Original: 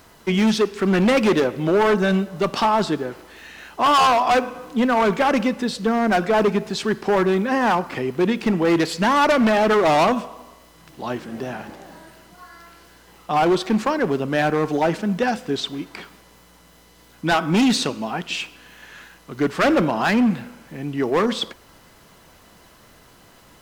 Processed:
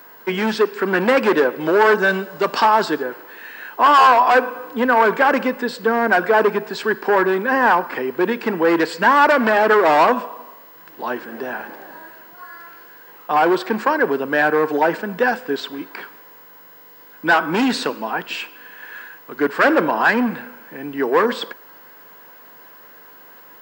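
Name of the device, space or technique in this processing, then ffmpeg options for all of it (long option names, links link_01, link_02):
old television with a line whistle: -filter_complex "[0:a]highpass=frequency=190:width=0.5412,highpass=frequency=190:width=1.3066,equalizer=frequency=200:width_type=q:width=4:gain=-6,equalizer=frequency=470:width_type=q:width=4:gain=5,equalizer=frequency=970:width_type=q:width=4:gain=7,equalizer=frequency=1600:width_type=q:width=4:gain=10,equalizer=frequency=3600:width_type=q:width=4:gain=-4,equalizer=frequency=6200:width_type=q:width=4:gain=-9,lowpass=frequency=8200:width=0.5412,lowpass=frequency=8200:width=1.3066,aeval=exprs='val(0)+0.00708*sin(2*PI*15625*n/s)':channel_layout=same,asettb=1/sr,asplit=3[link_01][link_02][link_03];[link_01]atrim=end=1.604[link_04];[link_02]atrim=start=1.6:end=3.03,asetpts=PTS-STARTPTS,afade=type=in:duration=0.004:curve=qsin,afade=type=out:start_time=1.426:duration=0.004:curve=qsin,equalizer=frequency=5800:width_type=o:width=1.6:gain=6[link_05];[link_03]atrim=start=3.026[link_06];[link_04][link_05]acrossfade=duration=0.004:curve1=hsin:curve2=qsin[link_07];[link_07][link_06]acrossfade=duration=0.004:curve1=qsin:curve2=hsin"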